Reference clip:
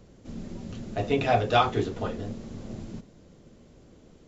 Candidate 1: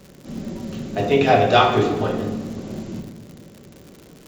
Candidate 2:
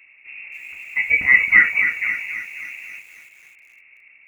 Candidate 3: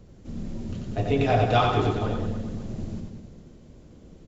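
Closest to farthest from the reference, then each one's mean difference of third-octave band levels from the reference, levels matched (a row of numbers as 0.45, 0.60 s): 3, 1, 2; 2.5, 4.0, 17.0 dB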